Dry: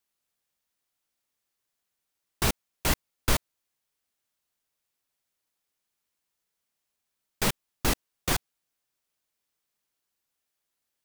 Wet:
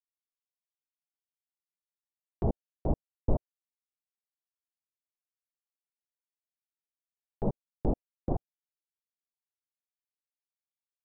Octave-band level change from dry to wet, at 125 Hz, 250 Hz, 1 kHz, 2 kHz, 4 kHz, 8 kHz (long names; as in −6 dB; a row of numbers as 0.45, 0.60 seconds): 0.0 dB, 0.0 dB, −8.5 dB, below −35 dB, below −40 dB, below −40 dB